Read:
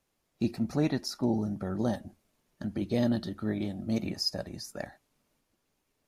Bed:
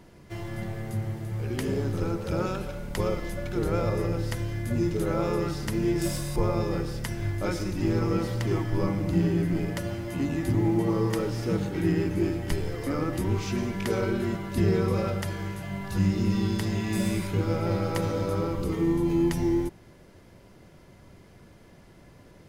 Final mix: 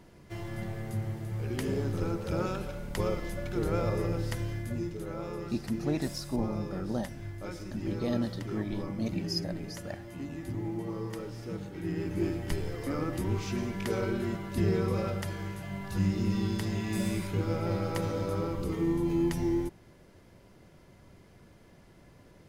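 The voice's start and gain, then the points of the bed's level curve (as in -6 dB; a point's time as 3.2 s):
5.10 s, -3.5 dB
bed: 4.51 s -3 dB
4.96 s -11 dB
11.8 s -11 dB
12.23 s -4 dB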